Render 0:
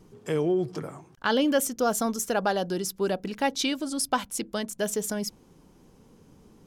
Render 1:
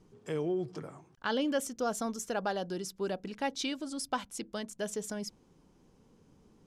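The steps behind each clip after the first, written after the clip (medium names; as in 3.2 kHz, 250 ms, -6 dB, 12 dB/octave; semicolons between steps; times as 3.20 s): low-pass 9.1 kHz 12 dB/octave; trim -7.5 dB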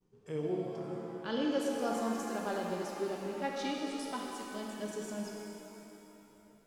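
harmonic-percussive split percussive -8 dB; expander -58 dBFS; pitch-shifted reverb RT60 3 s, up +7 st, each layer -8 dB, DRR -1 dB; trim -3.5 dB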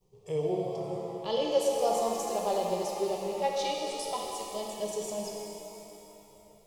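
static phaser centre 630 Hz, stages 4; trim +9 dB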